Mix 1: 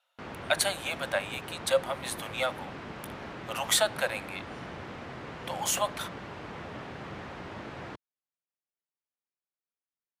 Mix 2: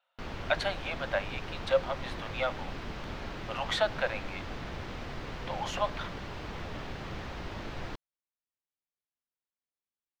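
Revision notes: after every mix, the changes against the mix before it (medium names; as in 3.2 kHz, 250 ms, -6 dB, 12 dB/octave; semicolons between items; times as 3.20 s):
background: remove band-pass 110–2100 Hz; master: add distance through air 230 m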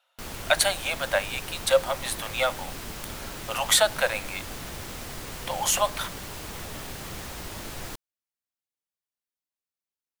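speech +5.0 dB; master: remove distance through air 230 m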